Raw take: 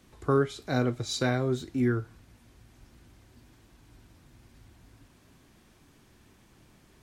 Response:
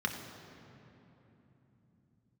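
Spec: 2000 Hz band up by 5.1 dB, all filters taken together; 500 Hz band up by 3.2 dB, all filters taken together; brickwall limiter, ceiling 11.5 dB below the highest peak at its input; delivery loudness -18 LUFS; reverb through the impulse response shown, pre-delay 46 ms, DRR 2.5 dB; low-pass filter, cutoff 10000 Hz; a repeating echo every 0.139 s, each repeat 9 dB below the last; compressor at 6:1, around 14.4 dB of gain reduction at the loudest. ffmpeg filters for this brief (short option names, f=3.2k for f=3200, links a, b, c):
-filter_complex "[0:a]lowpass=10k,equalizer=f=500:t=o:g=4,equalizer=f=2k:t=o:g=7,acompressor=threshold=-33dB:ratio=6,alimiter=level_in=6.5dB:limit=-24dB:level=0:latency=1,volume=-6.5dB,aecho=1:1:139|278|417|556:0.355|0.124|0.0435|0.0152,asplit=2[a][b];[1:a]atrim=start_sample=2205,adelay=46[c];[b][c]afir=irnorm=-1:irlink=0,volume=-8.5dB[d];[a][d]amix=inputs=2:normalize=0,volume=22dB"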